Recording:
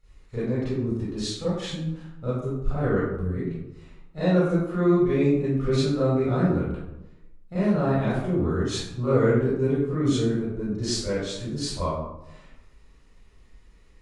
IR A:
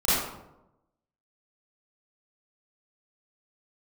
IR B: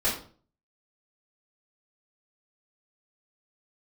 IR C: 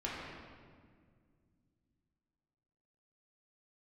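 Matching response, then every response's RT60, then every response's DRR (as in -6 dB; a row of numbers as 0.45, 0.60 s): A; 0.90, 0.45, 1.9 s; -13.5, -6.0, -7.0 dB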